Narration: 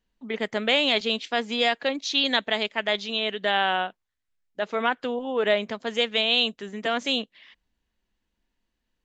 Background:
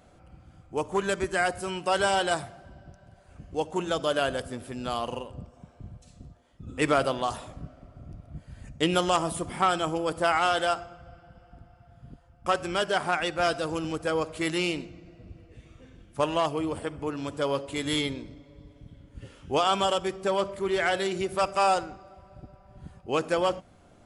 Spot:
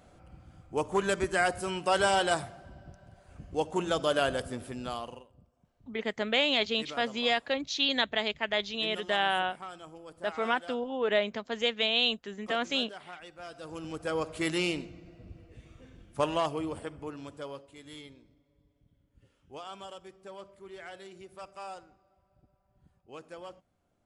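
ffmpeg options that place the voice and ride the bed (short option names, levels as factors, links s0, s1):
-filter_complex "[0:a]adelay=5650,volume=0.596[s0];[1:a]volume=6.68,afade=t=out:st=4.62:d=0.65:silence=0.11885,afade=t=in:st=13.5:d=0.88:silence=0.133352,afade=t=out:st=16.16:d=1.56:silence=0.133352[s1];[s0][s1]amix=inputs=2:normalize=0"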